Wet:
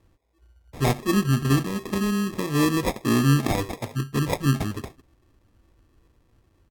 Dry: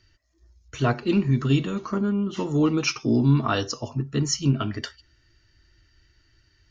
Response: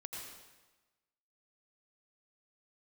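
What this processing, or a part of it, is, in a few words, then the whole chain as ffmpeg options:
crushed at another speed: -af "asetrate=55125,aresample=44100,acrusher=samples=24:mix=1:aa=0.000001,asetrate=35280,aresample=44100"

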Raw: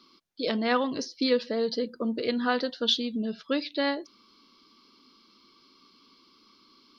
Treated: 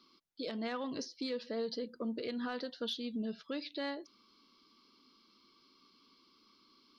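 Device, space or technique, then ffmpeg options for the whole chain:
soft clipper into limiter: -af "asoftclip=type=tanh:threshold=-13dB,alimiter=limit=-23dB:level=0:latency=1:release=173,volume=-7dB"

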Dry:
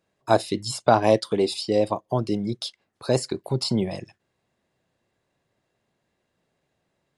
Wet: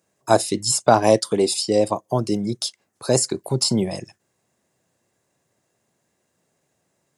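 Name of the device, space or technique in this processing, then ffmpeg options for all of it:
budget condenser microphone: -af "highpass=86,highshelf=f=5.1k:t=q:w=1.5:g=8.5,volume=3dB"

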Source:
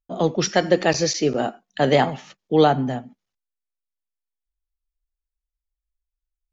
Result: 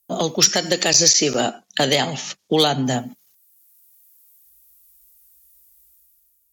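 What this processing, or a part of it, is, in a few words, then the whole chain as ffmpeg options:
FM broadcast chain: -filter_complex "[0:a]asettb=1/sr,asplit=3[a][b][c];[a]atrim=end=1.404[d];[b]atrim=start=1.4:end=2.86,asetpts=PTS-STARTPTS,afade=t=in:d=0.004:c=qsin,afade=t=out:st=1.456:d=0.004:c=qsin,lowpass=6.2k[e];[c]atrim=start=2.856[f];[d][e]acrossfade=d=0.004:c1=hsin:c2=qsin[g];[g][f]acrossfade=d=0.004:c1=qsin:c2=hsin,highpass=58,dynaudnorm=f=200:g=7:m=12dB,acrossover=split=780|2400[h][i][j];[h]acompressor=threshold=-24dB:ratio=4[k];[i]acompressor=threshold=-34dB:ratio=4[l];[j]acompressor=threshold=-28dB:ratio=4[m];[k][l][m]amix=inputs=3:normalize=0,aemphasis=mode=production:type=50fm,alimiter=limit=-12.5dB:level=0:latency=1:release=322,asoftclip=type=hard:threshold=-15dB,lowpass=f=15k:w=0.5412,lowpass=f=15k:w=1.3066,aemphasis=mode=production:type=50fm,volume=6dB"

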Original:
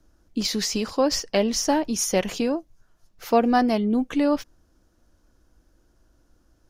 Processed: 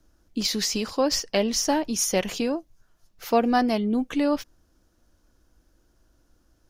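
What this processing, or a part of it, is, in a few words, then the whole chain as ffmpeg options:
presence and air boost: -af "equalizer=f=3.4k:t=o:w=1.9:g=2.5,highshelf=f=11k:g=6,volume=-2dB"

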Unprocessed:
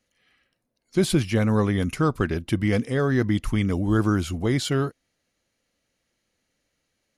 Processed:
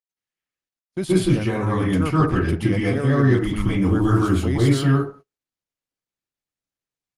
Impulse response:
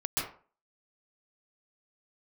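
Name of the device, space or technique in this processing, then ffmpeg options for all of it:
speakerphone in a meeting room: -filter_complex "[1:a]atrim=start_sample=2205[a];[0:a][a]afir=irnorm=-1:irlink=0,dynaudnorm=f=390:g=3:m=5.5dB,agate=range=-28dB:threshold=-35dB:ratio=16:detection=peak,volume=-4.5dB" -ar 48000 -c:a libopus -b:a 32k

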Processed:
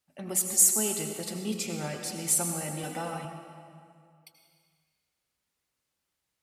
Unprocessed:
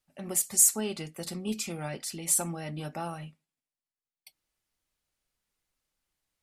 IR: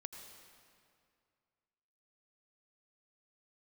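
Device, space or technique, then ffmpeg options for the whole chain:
stairwell: -filter_complex "[0:a]highpass=70[a];[1:a]atrim=start_sample=2205[b];[a][b]afir=irnorm=-1:irlink=0,asettb=1/sr,asplit=3[c][d][e];[c]atrim=end=2.834[f];[d]atrim=start=2.83:end=3.25,asetpts=PTS-STARTPTS,afade=t=in:d=0.004:c=qsin,afade=t=out:st=0.416:d=0.004:c=qsin,aecho=1:1:4:0.78,atrim=end_sample=18522[g];[e]atrim=start=3.246[h];[f][g]acrossfade=d=0.004:c1=hsin:c2=qsin[i];[i][h]acrossfade=d=0.004:c1=qsin:c2=hsin,volume=5.5dB"

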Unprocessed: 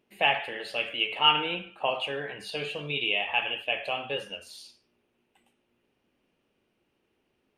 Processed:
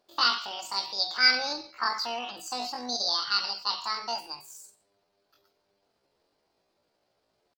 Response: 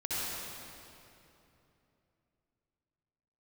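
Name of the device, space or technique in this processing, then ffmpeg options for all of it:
chipmunk voice: -filter_complex "[0:a]asplit=3[a][b][c];[a]afade=t=out:st=3.8:d=0.02[d];[b]equalizer=f=150:w=1:g=-4,afade=t=in:st=3.8:d=0.02,afade=t=out:st=4.25:d=0.02[e];[c]afade=t=in:st=4.25:d=0.02[f];[d][e][f]amix=inputs=3:normalize=0,asetrate=74167,aresample=44100,atempo=0.594604"

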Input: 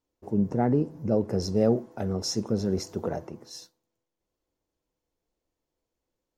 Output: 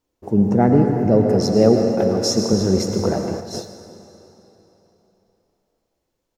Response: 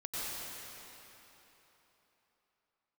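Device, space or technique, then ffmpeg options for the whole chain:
keyed gated reverb: -filter_complex "[0:a]asettb=1/sr,asplit=3[a][b][c];[a]atrim=end=1.284[d];[b]atrim=start=1.28:end=2.53,asetpts=PTS-STARTPTS,afade=t=in:d=0.004:c=qsin,afade=t=out:st=1.246:d=0.004:c=qsin,highpass=130[e];[c]atrim=start=2.526[f];[d][e]acrossfade=d=0.004:c1=hsin:c2=qsin[g];[g][f]acrossfade=d=0.004:c1=qsin:c2=hsin,aecho=1:1:156:0.106,asplit=3[h][i][j];[1:a]atrim=start_sample=2205[k];[i][k]afir=irnorm=-1:irlink=0[l];[j]apad=whole_len=288169[m];[l][m]sidechaingate=range=-7dB:threshold=-43dB:ratio=16:detection=peak,volume=-3.5dB[n];[h][n]amix=inputs=2:normalize=0,volume=6dB"

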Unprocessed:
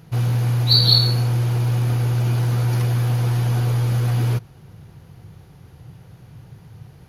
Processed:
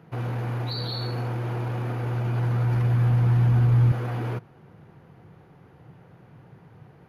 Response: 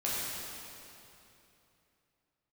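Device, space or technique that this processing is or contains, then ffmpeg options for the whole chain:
DJ mixer with the lows and highs turned down: -filter_complex "[0:a]acrossover=split=170 2400:gain=0.178 1 0.126[a][b][c];[a][b][c]amix=inputs=3:normalize=0,alimiter=limit=-22.5dB:level=0:latency=1:release=11,asettb=1/sr,asplit=3[d][e][f];[d]atrim=end=1.954[g];[e]atrim=start=1.95:end=3.92,asetpts=PTS-STARTPTS,afade=t=in:d=0.004:c=qsin,afade=t=out:st=1.966:d=0.004:c=qsin,asubboost=boost=9.5:cutoff=190[h];[f]atrim=start=3.916[i];[g][h]acrossfade=d=0.004:c1=hsin:c2=qsin[j];[j][i]acrossfade=d=0.004:c1=qsin:c2=hsin"

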